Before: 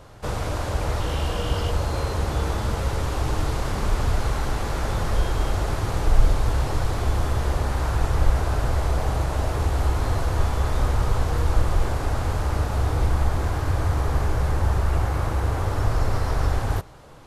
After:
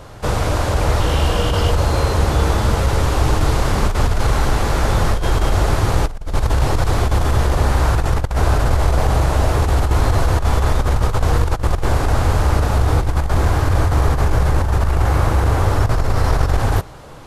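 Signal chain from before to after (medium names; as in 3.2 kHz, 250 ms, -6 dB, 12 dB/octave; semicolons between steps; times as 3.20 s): compressor with a negative ratio -21 dBFS, ratio -0.5; trim +7.5 dB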